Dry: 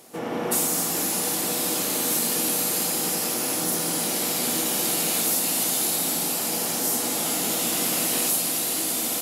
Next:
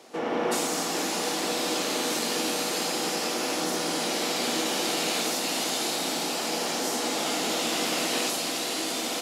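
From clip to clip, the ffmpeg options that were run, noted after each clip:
ffmpeg -i in.wav -filter_complex "[0:a]acrossover=split=230 6600:gain=0.224 1 0.1[link_01][link_02][link_03];[link_01][link_02][link_03]amix=inputs=3:normalize=0,volume=2dB" out.wav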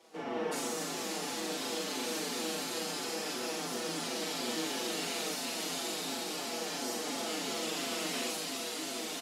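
ffmpeg -i in.wav -filter_complex "[0:a]asplit=2[link_01][link_02];[link_02]aecho=0:1:40.82|268.2:0.708|0.355[link_03];[link_01][link_03]amix=inputs=2:normalize=0,asplit=2[link_04][link_05];[link_05]adelay=5.6,afreqshift=-2.9[link_06];[link_04][link_06]amix=inputs=2:normalize=1,volume=-7.5dB" out.wav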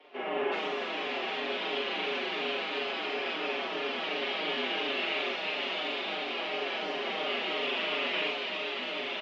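ffmpeg -i in.wav -af "aexciter=amount=1.6:drive=5:freq=2300,highpass=frequency=410:width_type=q:width=0.5412,highpass=frequency=410:width_type=q:width=1.307,lowpass=frequency=3500:width_type=q:width=0.5176,lowpass=frequency=3500:width_type=q:width=0.7071,lowpass=frequency=3500:width_type=q:width=1.932,afreqshift=-69,volume=5.5dB" out.wav

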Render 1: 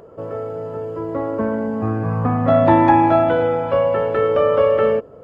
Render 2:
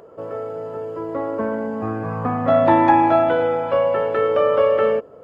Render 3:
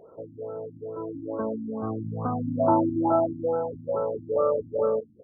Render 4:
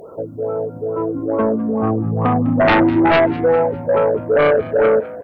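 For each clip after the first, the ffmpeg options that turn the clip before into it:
ffmpeg -i in.wav -af "lowshelf=frequency=180:gain=-11" out.wav
ffmpeg -i in.wav -af "aecho=1:1:73|146|219|292|365:0.112|0.0617|0.0339|0.0187|0.0103,afftfilt=real='re*lt(b*sr/1024,310*pow(1600/310,0.5+0.5*sin(2*PI*2.3*pts/sr)))':imag='im*lt(b*sr/1024,310*pow(1600/310,0.5+0.5*sin(2*PI*2.3*pts/sr)))':win_size=1024:overlap=0.75,volume=-6dB" out.wav
ffmpeg -i in.wav -filter_complex "[0:a]aeval=exprs='0.355*sin(PI/2*3.16*val(0)/0.355)':channel_layout=same,aemphasis=mode=production:type=cd,asplit=4[link_01][link_02][link_03][link_04];[link_02]adelay=202,afreqshift=62,volume=-18dB[link_05];[link_03]adelay=404,afreqshift=124,volume=-26.4dB[link_06];[link_04]adelay=606,afreqshift=186,volume=-34.8dB[link_07];[link_01][link_05][link_06][link_07]amix=inputs=4:normalize=0" out.wav

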